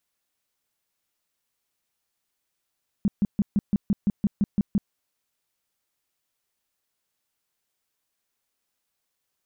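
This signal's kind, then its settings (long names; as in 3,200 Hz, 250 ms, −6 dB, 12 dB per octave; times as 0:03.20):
tone bursts 203 Hz, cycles 6, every 0.17 s, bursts 11, −17 dBFS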